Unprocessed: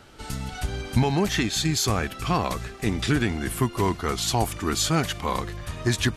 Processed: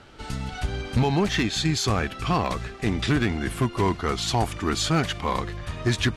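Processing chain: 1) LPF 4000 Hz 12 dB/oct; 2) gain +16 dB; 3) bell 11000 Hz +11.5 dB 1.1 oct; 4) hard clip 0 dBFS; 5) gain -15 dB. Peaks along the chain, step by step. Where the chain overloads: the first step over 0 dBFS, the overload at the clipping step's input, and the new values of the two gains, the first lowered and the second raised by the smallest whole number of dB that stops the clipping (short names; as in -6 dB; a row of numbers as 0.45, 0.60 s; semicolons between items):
-9.5, +6.5, +6.5, 0.0, -15.0 dBFS; step 2, 6.5 dB; step 2 +9 dB, step 5 -8 dB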